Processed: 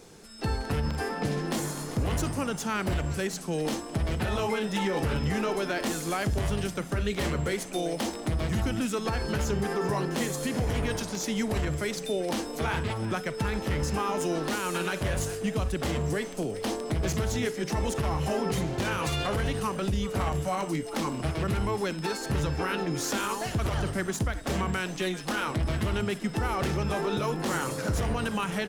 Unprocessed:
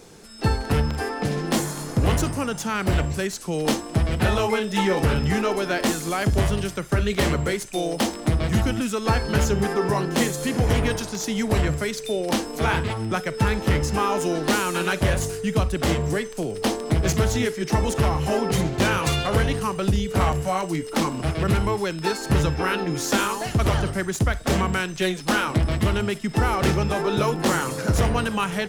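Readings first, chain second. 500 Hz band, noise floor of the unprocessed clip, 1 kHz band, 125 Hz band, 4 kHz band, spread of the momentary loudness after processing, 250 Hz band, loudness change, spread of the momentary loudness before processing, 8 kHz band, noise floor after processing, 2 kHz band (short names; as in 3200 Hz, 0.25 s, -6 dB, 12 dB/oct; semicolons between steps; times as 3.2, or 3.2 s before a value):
-6.0 dB, -35 dBFS, -6.5 dB, -7.0 dB, -6.5 dB, 3 LU, -6.0 dB, -6.5 dB, 4 LU, -5.5 dB, -39 dBFS, -6.5 dB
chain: frequency-shifting echo 0.391 s, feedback 35%, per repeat +110 Hz, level -18.5 dB; limiter -15.5 dBFS, peak gain reduction 9 dB; gain -4 dB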